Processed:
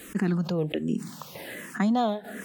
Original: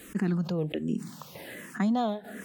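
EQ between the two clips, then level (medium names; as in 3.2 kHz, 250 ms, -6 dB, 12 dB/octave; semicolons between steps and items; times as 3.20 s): bass shelf 240 Hz -3.5 dB; +4.0 dB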